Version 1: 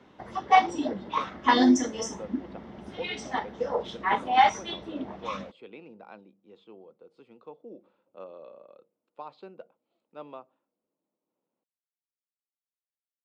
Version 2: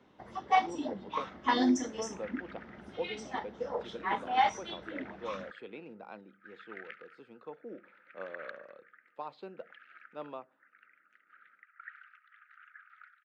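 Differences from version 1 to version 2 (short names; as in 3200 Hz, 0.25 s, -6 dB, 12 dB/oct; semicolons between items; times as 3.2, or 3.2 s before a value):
first sound -7.0 dB; second sound: unmuted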